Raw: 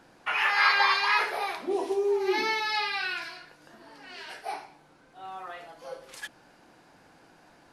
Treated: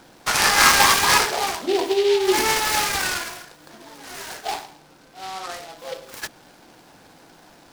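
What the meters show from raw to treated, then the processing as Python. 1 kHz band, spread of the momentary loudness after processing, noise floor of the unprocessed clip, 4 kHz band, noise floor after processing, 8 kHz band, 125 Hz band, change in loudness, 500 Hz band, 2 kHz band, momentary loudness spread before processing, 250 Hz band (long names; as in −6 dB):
+7.0 dB, 21 LU, −59 dBFS, +10.0 dB, −51 dBFS, +26.0 dB, can't be measured, +8.0 dB, +7.5 dB, +5.0 dB, 21 LU, +8.5 dB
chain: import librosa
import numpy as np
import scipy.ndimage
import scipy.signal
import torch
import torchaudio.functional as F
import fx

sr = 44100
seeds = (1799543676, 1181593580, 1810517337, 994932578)

y = fx.noise_mod_delay(x, sr, seeds[0], noise_hz=3100.0, depth_ms=0.087)
y = y * librosa.db_to_amplitude(7.5)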